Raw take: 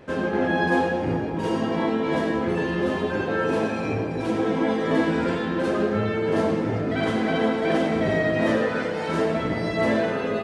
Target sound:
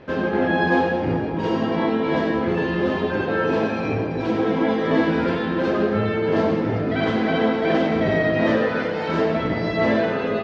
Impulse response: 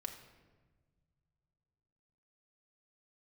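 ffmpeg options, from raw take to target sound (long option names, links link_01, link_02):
-af "lowpass=frequency=5200:width=0.5412,lowpass=frequency=5200:width=1.3066,volume=2.5dB"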